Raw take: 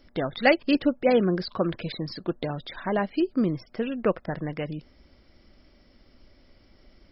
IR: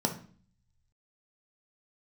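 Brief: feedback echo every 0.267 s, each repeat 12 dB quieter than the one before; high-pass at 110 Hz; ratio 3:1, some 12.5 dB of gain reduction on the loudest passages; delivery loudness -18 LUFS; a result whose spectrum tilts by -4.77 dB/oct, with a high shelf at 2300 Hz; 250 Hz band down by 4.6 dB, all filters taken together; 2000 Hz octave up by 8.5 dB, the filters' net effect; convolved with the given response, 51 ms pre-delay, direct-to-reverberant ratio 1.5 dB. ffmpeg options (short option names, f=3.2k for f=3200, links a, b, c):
-filter_complex "[0:a]highpass=110,equalizer=f=250:t=o:g=-6,equalizer=f=2k:t=o:g=7.5,highshelf=f=2.3k:g=4.5,acompressor=threshold=-26dB:ratio=3,aecho=1:1:267|534|801:0.251|0.0628|0.0157,asplit=2[a][b];[1:a]atrim=start_sample=2205,adelay=51[c];[b][c]afir=irnorm=-1:irlink=0,volume=-9dB[d];[a][d]amix=inputs=2:normalize=0,volume=8dB"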